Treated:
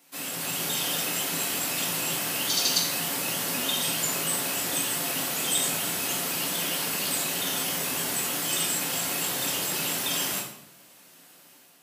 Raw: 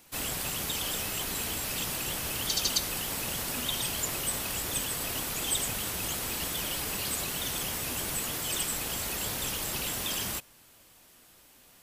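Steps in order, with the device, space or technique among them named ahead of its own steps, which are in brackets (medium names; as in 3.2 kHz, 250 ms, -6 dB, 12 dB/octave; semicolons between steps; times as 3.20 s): far laptop microphone (reverberation RT60 0.75 s, pre-delay 3 ms, DRR -2.5 dB; high-pass 150 Hz 24 dB/octave; level rider gain up to 5 dB); trim -4.5 dB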